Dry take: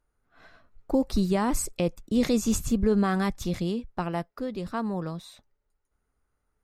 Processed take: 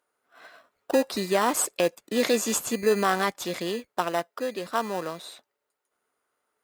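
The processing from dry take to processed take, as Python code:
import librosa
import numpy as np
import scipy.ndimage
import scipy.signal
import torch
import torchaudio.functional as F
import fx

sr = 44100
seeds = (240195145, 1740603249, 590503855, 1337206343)

p1 = fx.peak_eq(x, sr, hz=5700.0, db=-4.5, octaves=0.25)
p2 = fx.sample_hold(p1, sr, seeds[0], rate_hz=2200.0, jitter_pct=0)
p3 = p1 + F.gain(torch.from_numpy(p2), -9.0).numpy()
p4 = scipy.signal.sosfilt(scipy.signal.butter(2, 510.0, 'highpass', fs=sr, output='sos'), p3)
p5 = fx.notch(p4, sr, hz=830.0, q=13.0)
y = F.gain(torch.from_numpy(p5), 6.0).numpy()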